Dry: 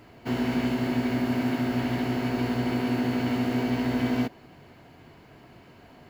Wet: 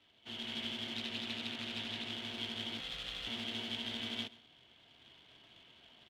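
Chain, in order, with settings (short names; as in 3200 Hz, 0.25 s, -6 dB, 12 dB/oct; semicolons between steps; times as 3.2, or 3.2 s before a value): tilt -4.5 dB/oct; AGC gain up to 7.5 dB; in parallel at -4 dB: short-mantissa float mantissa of 2-bit; 2.79–3.27 on the sum: frequency shift -190 Hz; band-pass 3300 Hz, Q 10; frequency shift -16 Hz; on a send: echo 0.133 s -20 dB; 0.95–2.11 on the sum: Doppler distortion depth 0.23 ms; gain +4.5 dB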